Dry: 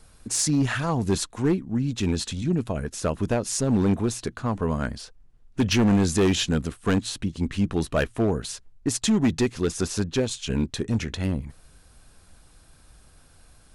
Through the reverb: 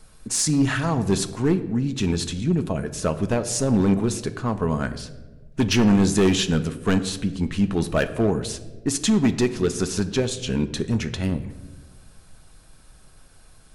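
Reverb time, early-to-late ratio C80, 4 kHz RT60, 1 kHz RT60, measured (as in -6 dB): 1.3 s, 15.0 dB, 0.70 s, 1.0 s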